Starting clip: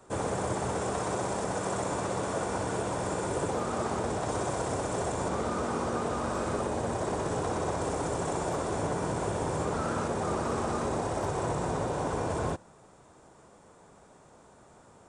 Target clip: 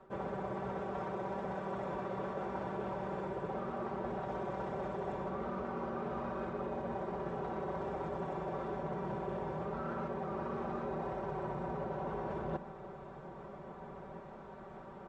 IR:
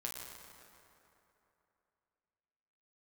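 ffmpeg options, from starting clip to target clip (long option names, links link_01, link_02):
-filter_complex "[0:a]lowpass=2800,aemphasis=mode=reproduction:type=50fm,aecho=1:1:5.2:0.78,areverse,acompressor=threshold=-40dB:ratio=10,areverse,asplit=2[link_01][link_02];[link_02]adelay=1633,volume=-13dB,highshelf=frequency=4000:gain=-36.7[link_03];[link_01][link_03]amix=inputs=2:normalize=0,volume=4dB"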